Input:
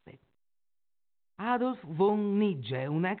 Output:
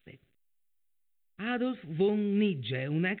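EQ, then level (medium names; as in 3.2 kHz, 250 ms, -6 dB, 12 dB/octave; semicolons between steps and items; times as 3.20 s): treble shelf 2.7 kHz +9.5 dB; static phaser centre 2.3 kHz, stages 4; +1.0 dB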